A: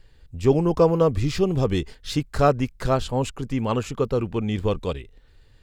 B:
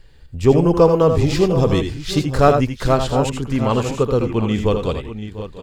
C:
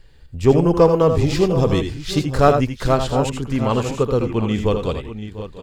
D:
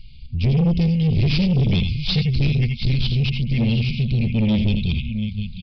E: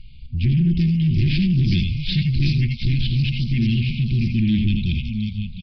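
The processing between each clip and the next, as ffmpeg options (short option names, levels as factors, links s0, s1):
-af "aecho=1:1:81|95|696|734:0.398|0.178|0.141|0.237,volume=1.78"
-af "aeval=exprs='0.891*(cos(1*acos(clip(val(0)/0.891,-1,1)))-cos(1*PI/2))+0.0398*(cos(3*acos(clip(val(0)/0.891,-1,1)))-cos(3*PI/2))':c=same"
-af "afftfilt=real='re*(1-between(b*sr/4096,240,2100))':imag='im*(1-between(b*sr/4096,240,2100))':win_size=4096:overlap=0.75,aresample=11025,asoftclip=type=tanh:threshold=0.0794,aresample=44100,volume=2.51"
-filter_complex "[0:a]afftfilt=real='re*(1-between(b*sr/4096,380,1500))':imag='im*(1-between(b*sr/4096,380,1500))':win_size=4096:overlap=0.75,acrossover=split=4700[s0][s1];[s1]adelay=370[s2];[s0][s2]amix=inputs=2:normalize=0" -ar 32000 -c:a libvorbis -b:a 96k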